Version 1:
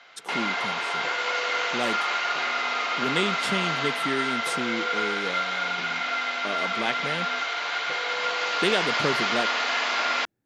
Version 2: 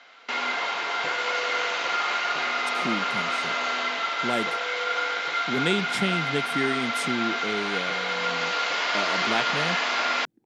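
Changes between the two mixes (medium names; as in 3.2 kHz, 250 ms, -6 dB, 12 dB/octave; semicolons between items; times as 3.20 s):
speech: entry +2.50 s; master: add bass shelf 240 Hz +5 dB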